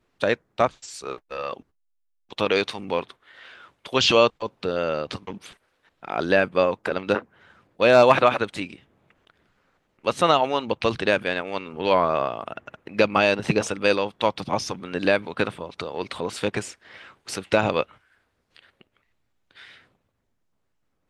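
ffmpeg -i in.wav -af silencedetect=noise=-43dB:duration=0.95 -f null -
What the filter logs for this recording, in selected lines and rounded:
silence_start: 19.80
silence_end: 21.09 | silence_duration: 1.29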